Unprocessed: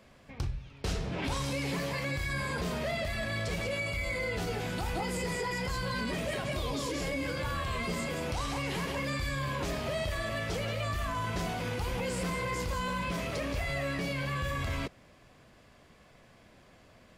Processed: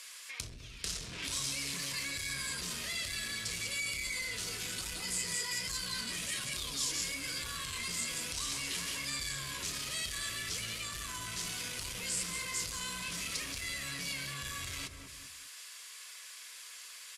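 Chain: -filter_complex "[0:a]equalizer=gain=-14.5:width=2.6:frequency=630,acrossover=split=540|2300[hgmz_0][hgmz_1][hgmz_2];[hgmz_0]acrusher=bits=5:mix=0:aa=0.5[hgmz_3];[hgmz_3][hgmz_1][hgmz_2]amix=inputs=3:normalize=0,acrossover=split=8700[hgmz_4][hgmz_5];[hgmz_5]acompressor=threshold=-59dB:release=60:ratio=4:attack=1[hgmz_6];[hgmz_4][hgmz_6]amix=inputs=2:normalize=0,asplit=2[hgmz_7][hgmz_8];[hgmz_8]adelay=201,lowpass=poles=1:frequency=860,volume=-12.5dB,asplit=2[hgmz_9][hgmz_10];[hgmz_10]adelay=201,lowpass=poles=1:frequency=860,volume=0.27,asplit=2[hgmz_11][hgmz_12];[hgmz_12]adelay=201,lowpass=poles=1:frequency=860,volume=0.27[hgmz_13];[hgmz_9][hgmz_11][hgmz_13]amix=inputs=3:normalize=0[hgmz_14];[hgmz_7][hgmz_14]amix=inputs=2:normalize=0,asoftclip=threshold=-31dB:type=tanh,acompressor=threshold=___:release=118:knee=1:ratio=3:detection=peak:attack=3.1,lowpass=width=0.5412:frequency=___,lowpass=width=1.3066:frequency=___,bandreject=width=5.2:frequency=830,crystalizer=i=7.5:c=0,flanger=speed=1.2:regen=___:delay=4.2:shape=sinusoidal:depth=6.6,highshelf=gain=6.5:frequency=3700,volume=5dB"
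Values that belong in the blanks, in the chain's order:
-50dB, 12000, 12000, -66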